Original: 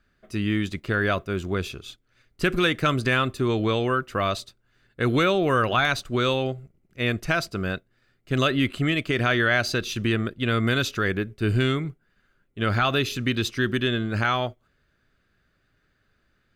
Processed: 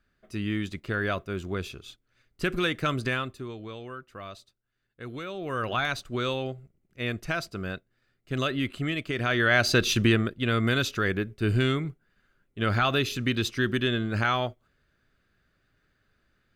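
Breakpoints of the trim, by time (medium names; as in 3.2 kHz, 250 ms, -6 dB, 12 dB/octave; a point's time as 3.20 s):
3.07 s -5 dB
3.57 s -16.5 dB
5.26 s -16.5 dB
5.70 s -6 dB
9.18 s -6 dB
9.90 s +6 dB
10.33 s -2 dB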